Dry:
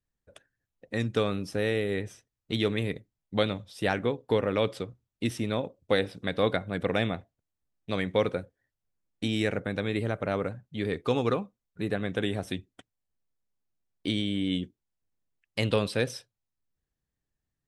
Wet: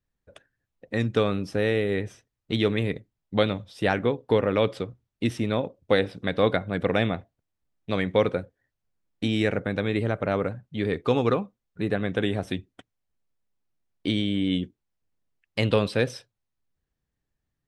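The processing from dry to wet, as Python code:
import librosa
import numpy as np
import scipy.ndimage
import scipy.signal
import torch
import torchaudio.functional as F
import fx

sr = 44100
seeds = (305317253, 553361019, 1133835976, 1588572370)

y = fx.high_shelf(x, sr, hz=6300.0, db=-10.5)
y = y * librosa.db_to_amplitude(4.0)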